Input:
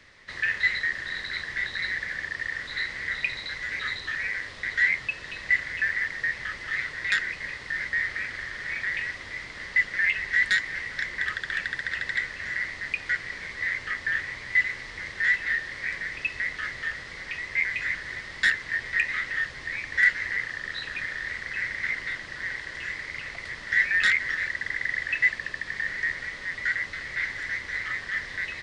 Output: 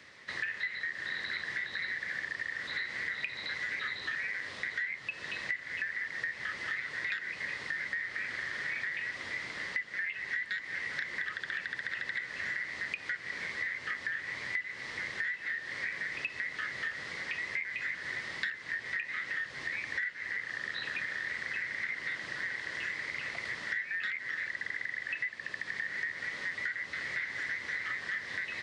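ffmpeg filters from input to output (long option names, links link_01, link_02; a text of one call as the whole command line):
ffmpeg -i in.wav -filter_complex "[0:a]acrossover=split=4200[link_01][link_02];[link_02]acompressor=threshold=-49dB:ratio=4:attack=1:release=60[link_03];[link_01][link_03]amix=inputs=2:normalize=0,highpass=130,acompressor=threshold=-32dB:ratio=16" out.wav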